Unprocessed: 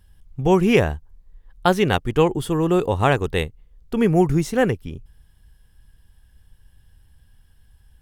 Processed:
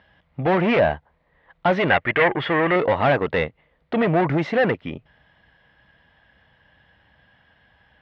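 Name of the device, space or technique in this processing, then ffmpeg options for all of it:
overdrive pedal into a guitar cabinet: -filter_complex "[0:a]asplit=2[a][b];[b]highpass=f=720:p=1,volume=29dB,asoftclip=type=tanh:threshold=-2dB[c];[a][c]amix=inputs=2:normalize=0,lowpass=f=1.4k:p=1,volume=-6dB,highpass=78,equalizer=f=96:t=q:w=4:g=-5,equalizer=f=400:t=q:w=4:g=-6,equalizer=f=620:t=q:w=4:g=8,equalizer=f=2k:t=q:w=4:g=7,lowpass=f=3.9k:w=0.5412,lowpass=f=3.9k:w=1.3066,asettb=1/sr,asplit=3[d][e][f];[d]atrim=end=1.904[g];[e]atrim=start=1.9:end=2.76,asetpts=PTS-STARTPTS,afade=t=in:d=0.004:c=qsin,afade=t=out:st=0.856:d=0.004:c=qsin,equalizer=f=250:t=o:w=1:g=-5,equalizer=f=2k:t=o:w=1:g=10,equalizer=f=8k:t=o:w=1:g=-6[h];[f]atrim=start=2.756[i];[g][h]acrossfade=d=0.004:c1=hsin:c2=qsin[j];[j][i]acrossfade=d=0.004:c1=qsin:c2=hsin,volume=-8dB"

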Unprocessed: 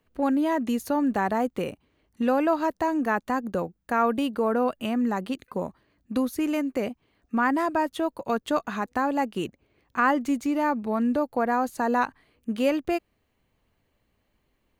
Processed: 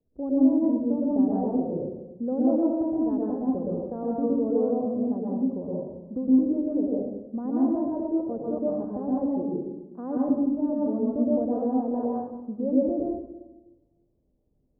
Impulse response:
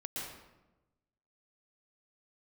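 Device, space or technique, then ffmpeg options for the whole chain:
next room: -filter_complex "[0:a]asettb=1/sr,asplit=3[a][b][c];[a]atrim=end=9.424[d];[b]atrim=start=9.42:end=10.17,asetpts=PTS-STARTPTS,afade=t=in:d=0.004:c=qsin,afade=t=out:st=0.746:d=0.004:c=qsin,highpass=f=180:w=0.5412,highpass=f=180:w=1.3066[e];[c]atrim=start=10.166[f];[d][e]acrossfade=d=0.004:c1=hsin:c2=qsin[g];[g][f]acrossfade=d=0.004:c1=qsin:c2=hsin,lowpass=f=580:w=0.5412,lowpass=f=580:w=1.3066[h];[1:a]atrim=start_sample=2205[i];[h][i]afir=irnorm=-1:irlink=0"

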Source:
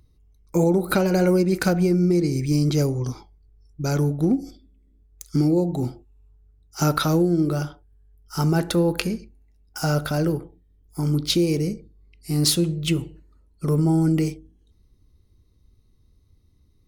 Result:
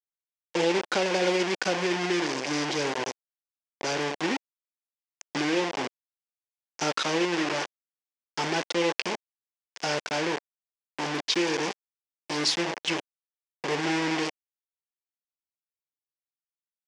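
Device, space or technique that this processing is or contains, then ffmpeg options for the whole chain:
hand-held game console: -af "acrusher=bits=3:mix=0:aa=0.000001,highpass=470,equalizer=f=640:t=q:w=4:g=-4,equalizer=f=1.3k:t=q:w=4:g=-8,equalizer=f=4k:t=q:w=4:g=-5,lowpass=f=5.8k:w=0.5412,lowpass=f=5.8k:w=1.3066"

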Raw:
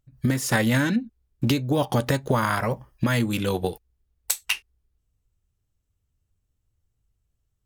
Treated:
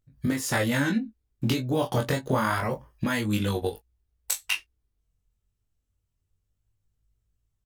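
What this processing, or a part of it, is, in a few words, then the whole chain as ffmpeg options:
double-tracked vocal: -filter_complex "[0:a]asplit=2[a][b];[b]adelay=19,volume=-9dB[c];[a][c]amix=inputs=2:normalize=0,flanger=delay=19.5:depth=4.2:speed=0.28"

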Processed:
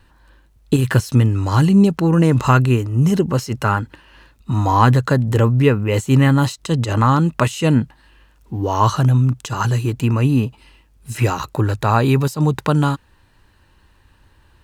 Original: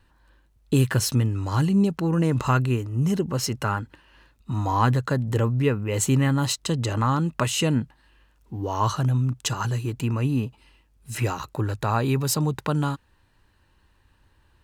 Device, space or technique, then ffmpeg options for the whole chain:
de-esser from a sidechain: -filter_complex "[0:a]asplit=2[a][b];[b]highpass=6.4k,apad=whole_len=645412[c];[a][c]sidechaincompress=threshold=-38dB:ratio=12:attack=1.3:release=65,volume=8dB"

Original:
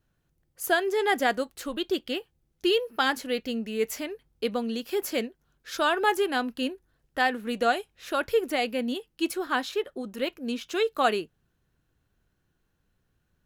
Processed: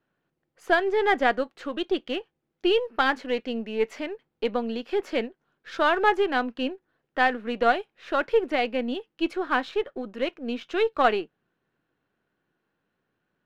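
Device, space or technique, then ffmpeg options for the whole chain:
crystal radio: -af "highpass=240,lowpass=2.7k,aeval=exprs='if(lt(val(0),0),0.708*val(0),val(0))':c=same,volume=4dB"

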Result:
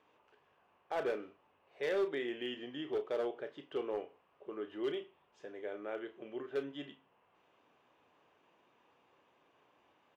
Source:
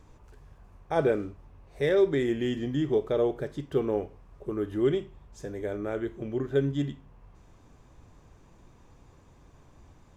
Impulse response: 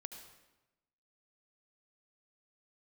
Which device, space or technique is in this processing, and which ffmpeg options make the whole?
megaphone: -filter_complex "[0:a]highpass=450,lowpass=3k,equalizer=f=2.9k:t=o:w=0.4:g=10,asoftclip=type=hard:threshold=-23dB,asplit=2[a][b];[b]adelay=33,volume=-10.5dB[c];[a][c]amix=inputs=2:normalize=0,volume=-6.5dB"

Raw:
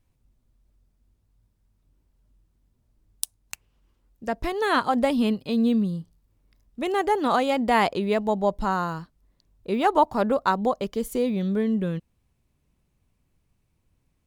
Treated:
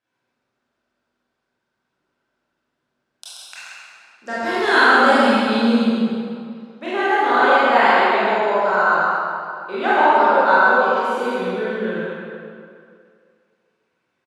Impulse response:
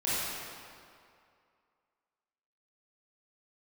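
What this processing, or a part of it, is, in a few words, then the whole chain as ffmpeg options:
station announcement: -filter_complex "[0:a]asettb=1/sr,asplit=3[a][b][c];[a]atrim=end=4.254[d];[b]atrim=start=4.25:end=5.84,asetpts=PTS-STARTPTS,afade=t=in:d=0.004:c=qsin,afade=t=out:st=1.586:d=0.004:c=qsin,bass=f=250:g=12,treble=f=4k:g=13[e];[c]atrim=start=5.836[f];[d][e]acrossfade=d=0.004:c1=hsin:c2=qsin[g];[g][f]acrossfade=d=0.004:c1=qsin:c2=hsin,highpass=420,lowpass=4.9k,equalizer=f=1.5k:t=o:w=0.32:g=11,aecho=1:1:43.73|131.2:0.316|0.562[h];[1:a]atrim=start_sample=2205[i];[h][i]afir=irnorm=-1:irlink=0,volume=-3dB"

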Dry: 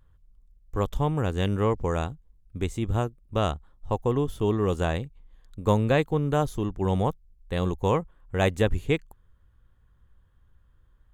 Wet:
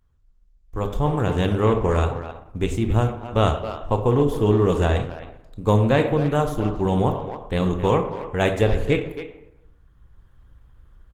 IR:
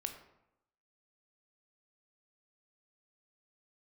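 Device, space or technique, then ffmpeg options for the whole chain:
speakerphone in a meeting room: -filter_complex "[1:a]atrim=start_sample=2205[a];[0:a][a]afir=irnorm=-1:irlink=0,asplit=2[b][c];[c]adelay=270,highpass=300,lowpass=3.4k,asoftclip=type=hard:threshold=-19dB,volume=-10dB[d];[b][d]amix=inputs=2:normalize=0,dynaudnorm=f=580:g=3:m=15dB,volume=-3.5dB" -ar 48000 -c:a libopus -b:a 16k

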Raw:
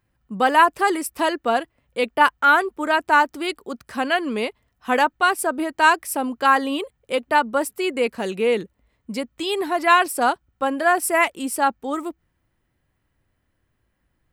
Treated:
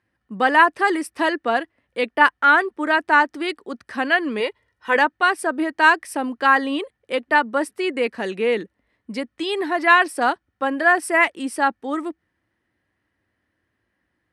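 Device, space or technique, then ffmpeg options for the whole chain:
car door speaker: -filter_complex "[0:a]asettb=1/sr,asplit=3[a][b][c];[a]atrim=end=4.404[d];[b]atrim=start=4.4:end=4.96,asetpts=PTS-STARTPTS,afade=t=in:d=0.004:c=qsin,afade=t=out:st=0.556:d=0.004:c=qsin,aecho=1:1:2.1:0.65,atrim=end_sample=24696[e];[c]atrim=start=4.956[f];[d][e]acrossfade=d=0.004:c1=hsin:c2=qsin[g];[g][f]acrossfade=d=0.004:c1=qsin:c2=hsin,highpass=100,equalizer=f=140:t=q:w=4:g=-9,equalizer=f=310:t=q:w=4:g=4,equalizer=f=1.8k:t=q:w=4:g=8,equalizer=f=7.3k:t=q:w=4:g=-9,lowpass=f=9.3k:w=0.5412,lowpass=f=9.3k:w=1.3066,volume=-1dB"

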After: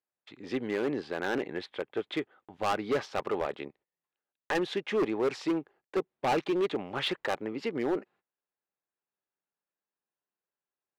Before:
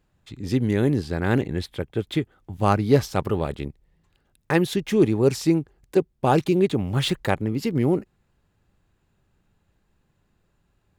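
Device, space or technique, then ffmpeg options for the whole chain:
walkie-talkie: -af "highpass=470,lowpass=2.8k,asoftclip=type=hard:threshold=-23.5dB,agate=range=-21dB:threshold=-58dB:ratio=16:detection=peak"

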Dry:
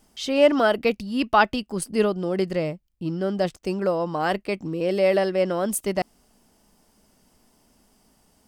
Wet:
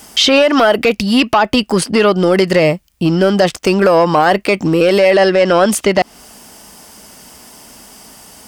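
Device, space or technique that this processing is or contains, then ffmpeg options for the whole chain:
mastering chain: -filter_complex "[0:a]asettb=1/sr,asplit=3[a][b][c];[a]atrim=end=5.114[d];[b]atrim=start=5.11:end=5.72,asetpts=PTS-STARTPTS,afade=t=in:d=0.004:c=qsin,afade=t=out:st=0.606:d=0.004:c=qsin,lowpass=f=8.5k:w=0.5412,lowpass=f=8.5k:w=1.3066[e];[c]atrim=start=5.716[f];[d][e]acrossfade=d=0.004:c1=hsin:c2=qsin[g];[g][f]acrossfade=d=0.004:c1=qsin:c2=hsin,highpass=43,equalizer=f=4k:t=o:w=0.33:g=-2,acrossover=split=960|5200[h][i][j];[h]acompressor=threshold=-21dB:ratio=4[k];[i]acompressor=threshold=-31dB:ratio=4[l];[j]acompressor=threshold=-53dB:ratio=4[m];[k][l][m]amix=inputs=3:normalize=0,acompressor=threshold=-27dB:ratio=2,asoftclip=type=tanh:threshold=-20dB,tiltshelf=f=630:g=-5,alimiter=level_in=22dB:limit=-1dB:release=50:level=0:latency=1,volume=-1dB"

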